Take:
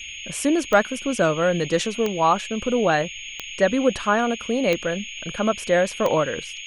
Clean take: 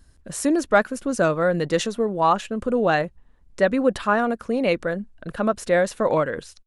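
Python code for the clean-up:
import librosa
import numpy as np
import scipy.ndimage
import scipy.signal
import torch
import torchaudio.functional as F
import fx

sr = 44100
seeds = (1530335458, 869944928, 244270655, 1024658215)

y = fx.fix_declick_ar(x, sr, threshold=10.0)
y = fx.notch(y, sr, hz=6600.0, q=30.0)
y = fx.noise_reduce(y, sr, print_start_s=3.08, print_end_s=3.58, reduce_db=15.0)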